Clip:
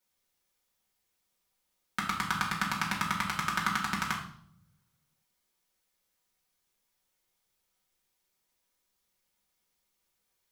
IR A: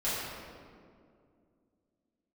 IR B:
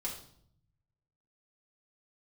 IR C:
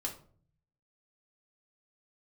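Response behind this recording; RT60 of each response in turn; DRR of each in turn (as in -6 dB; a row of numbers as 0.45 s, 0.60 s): B; 2.3 s, 0.65 s, 0.50 s; -12.0 dB, -5.0 dB, -1.0 dB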